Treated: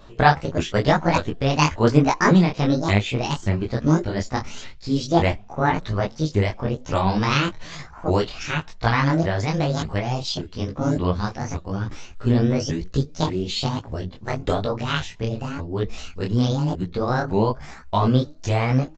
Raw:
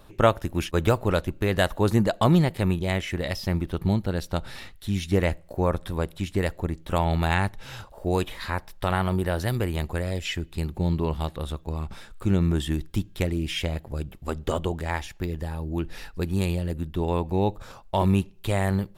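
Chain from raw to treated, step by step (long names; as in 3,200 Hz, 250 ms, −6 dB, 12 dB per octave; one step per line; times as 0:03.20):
pitch shifter swept by a sawtooth +10 semitones, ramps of 577 ms
downsampling to 16,000 Hz
micro pitch shift up and down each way 35 cents
level +8.5 dB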